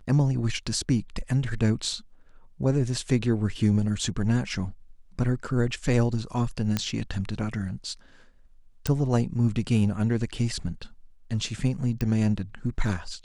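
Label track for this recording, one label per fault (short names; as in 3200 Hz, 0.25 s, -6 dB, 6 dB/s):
6.770000	6.770000	pop -11 dBFS
8.870000	8.870000	pop -11 dBFS
12.010000	12.010000	pop -16 dBFS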